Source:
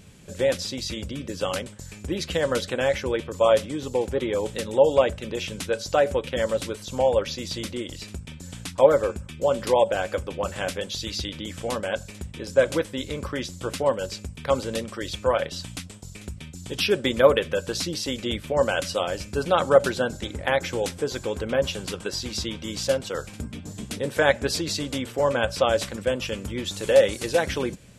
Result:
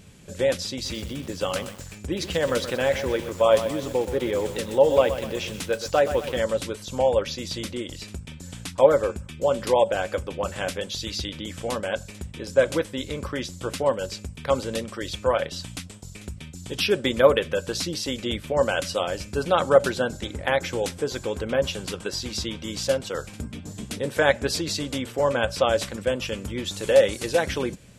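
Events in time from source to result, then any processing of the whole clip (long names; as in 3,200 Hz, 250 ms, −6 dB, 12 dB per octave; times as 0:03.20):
0:00.71–0:06.40: feedback echo at a low word length 124 ms, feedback 55%, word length 6 bits, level −10 dB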